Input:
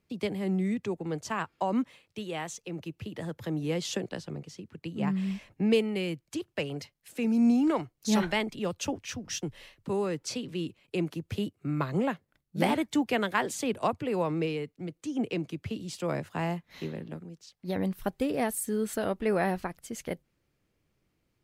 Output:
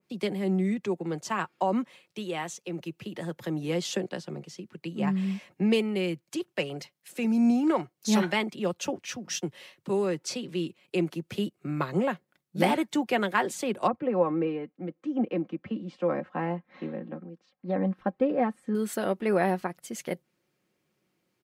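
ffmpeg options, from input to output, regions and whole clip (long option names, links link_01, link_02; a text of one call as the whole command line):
ffmpeg -i in.wav -filter_complex "[0:a]asettb=1/sr,asplit=3[link_01][link_02][link_03];[link_01]atrim=end=13.874[link_04];[link_02]atrim=start=13.87:end=18.75,asetpts=PTS-STARTPTS,afade=type=in:duration=0.004:curve=qsin,afade=type=out:start_time=4.876:duration=0.004:curve=qsin,lowpass=1600,aecho=1:1:3.8:0.58,atrim=end_sample=215208[link_05];[link_03]atrim=start=18.746[link_06];[link_04][link_05]acrossfade=duration=0.004:curve1=hsin:curve2=qsin[link_07];[link_07][link_06]acrossfade=duration=0.004:curve1=qsin:curve2=hsin,highpass=180,aecho=1:1:5.5:0.36,adynamicequalizer=threshold=0.00562:dfrequency=2200:dqfactor=0.7:tfrequency=2200:tqfactor=0.7:attack=5:release=100:ratio=0.375:range=2:mode=cutabove:tftype=highshelf,volume=2dB" out.wav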